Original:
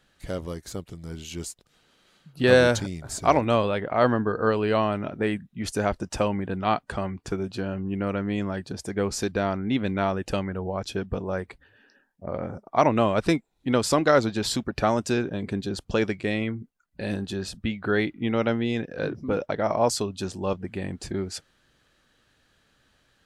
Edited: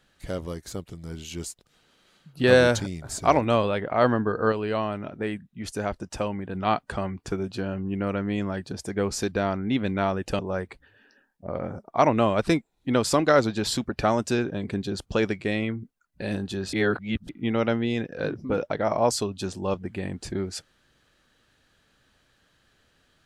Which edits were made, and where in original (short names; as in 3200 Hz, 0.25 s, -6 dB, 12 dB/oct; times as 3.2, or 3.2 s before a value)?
4.52–6.55 gain -4 dB
10.39–11.18 cut
17.52–18.08 reverse